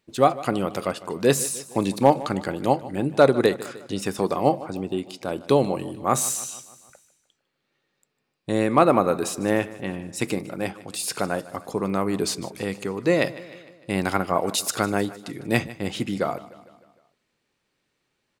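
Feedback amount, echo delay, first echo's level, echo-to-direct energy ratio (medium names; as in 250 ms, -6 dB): 56%, 152 ms, -18.0 dB, -16.5 dB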